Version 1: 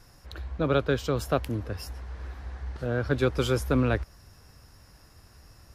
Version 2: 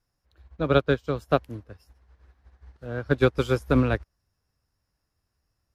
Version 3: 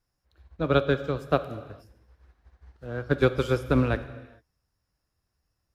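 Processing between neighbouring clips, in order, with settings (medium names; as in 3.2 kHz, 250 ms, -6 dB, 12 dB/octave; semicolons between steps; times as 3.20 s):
upward expansion 2.5:1, over -40 dBFS; trim +6 dB
gated-style reverb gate 470 ms falling, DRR 11 dB; trim -1.5 dB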